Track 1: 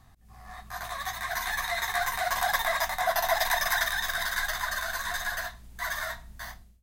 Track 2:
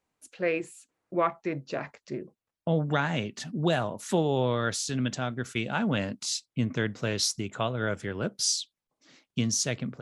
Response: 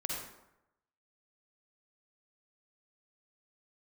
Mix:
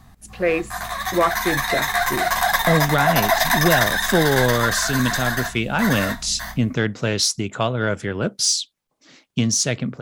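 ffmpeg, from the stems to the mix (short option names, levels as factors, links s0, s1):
-filter_complex "[0:a]equalizer=f=200:t=o:w=0.77:g=7,volume=1.33[s0];[1:a]asoftclip=type=tanh:threshold=0.211,volume=1.41[s1];[s0][s1]amix=inputs=2:normalize=0,acontrast=35"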